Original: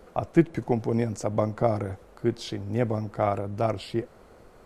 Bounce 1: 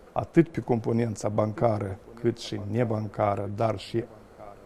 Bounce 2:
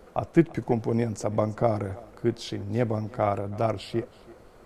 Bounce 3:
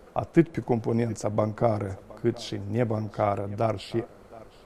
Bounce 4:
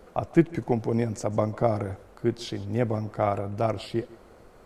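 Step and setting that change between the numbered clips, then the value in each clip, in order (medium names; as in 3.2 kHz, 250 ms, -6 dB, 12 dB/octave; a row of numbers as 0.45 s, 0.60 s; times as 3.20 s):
thinning echo, time: 1197 ms, 328 ms, 719 ms, 149 ms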